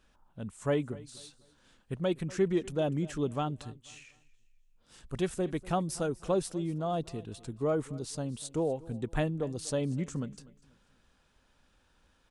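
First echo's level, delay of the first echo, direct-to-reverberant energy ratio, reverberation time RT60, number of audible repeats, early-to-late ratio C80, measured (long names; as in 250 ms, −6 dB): −20.5 dB, 245 ms, no reverb audible, no reverb audible, 2, no reverb audible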